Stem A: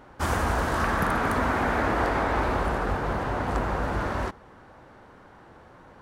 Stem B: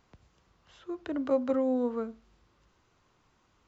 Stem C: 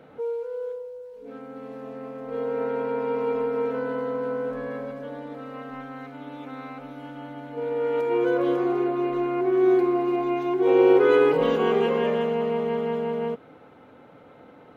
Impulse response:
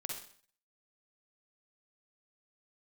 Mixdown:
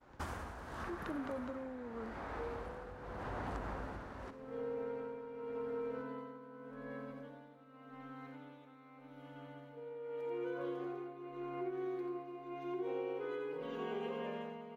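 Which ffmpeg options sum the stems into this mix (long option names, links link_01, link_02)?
-filter_complex "[0:a]acompressor=threshold=-28dB:ratio=4,highshelf=frequency=6800:gain=-4,volume=-9dB,asplit=2[link_01][link_02];[link_02]volume=-7.5dB[link_03];[1:a]alimiter=level_in=3dB:limit=-24dB:level=0:latency=1,volume=-3dB,volume=-3.5dB,asplit=2[link_04][link_05];[2:a]adelay=2200,volume=-13dB,asplit=2[link_06][link_07];[link_07]volume=-5dB[link_08];[link_05]apad=whole_len=265459[link_09];[link_01][link_09]sidechaincompress=threshold=-51dB:ratio=3:attack=16:release=1030[link_10];[3:a]atrim=start_sample=2205[link_11];[link_03][link_11]afir=irnorm=-1:irlink=0[link_12];[link_08]aecho=0:1:87:1[link_13];[link_10][link_04][link_06][link_12][link_13]amix=inputs=5:normalize=0,agate=range=-33dB:threshold=-52dB:ratio=3:detection=peak,tremolo=f=0.85:d=0.71,acompressor=threshold=-37dB:ratio=6"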